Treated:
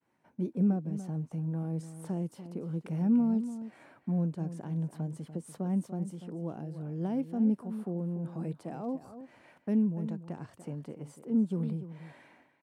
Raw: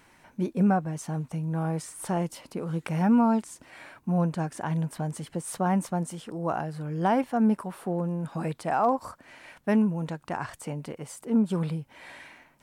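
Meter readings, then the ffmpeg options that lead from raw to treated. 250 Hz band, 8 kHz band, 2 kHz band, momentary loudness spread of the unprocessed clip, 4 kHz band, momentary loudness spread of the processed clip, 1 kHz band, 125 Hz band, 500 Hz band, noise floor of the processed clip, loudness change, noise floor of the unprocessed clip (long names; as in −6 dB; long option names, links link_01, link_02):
−3.5 dB, below −10 dB, below −15 dB, 15 LU, below −10 dB, 14 LU, −18.5 dB, −4.0 dB, −9.5 dB, −68 dBFS, −5.0 dB, −61 dBFS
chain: -filter_complex "[0:a]highpass=130,agate=range=-33dB:threshold=-51dB:ratio=3:detection=peak,tiltshelf=frequency=1100:gain=6.5,acrossover=split=460|2500[link_01][link_02][link_03];[link_02]acompressor=threshold=-42dB:ratio=6[link_04];[link_01][link_04][link_03]amix=inputs=3:normalize=0,asplit=2[link_05][link_06];[link_06]adelay=291.5,volume=-12dB,highshelf=frequency=4000:gain=-6.56[link_07];[link_05][link_07]amix=inputs=2:normalize=0,volume=-9dB"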